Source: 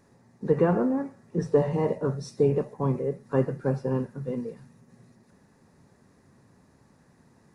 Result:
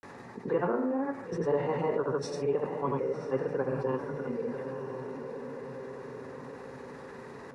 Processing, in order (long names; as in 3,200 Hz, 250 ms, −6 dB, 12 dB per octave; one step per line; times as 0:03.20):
parametric band 630 Hz −5 dB 0.52 octaves
granular cloud, pitch spread up and down by 0 semitones
three-way crossover with the lows and the highs turned down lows −14 dB, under 370 Hz, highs −13 dB, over 3,600 Hz
on a send: feedback delay with all-pass diffusion 1,004 ms, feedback 41%, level −14.5 dB
on the sum: envelope flattener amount 50%
level −1.5 dB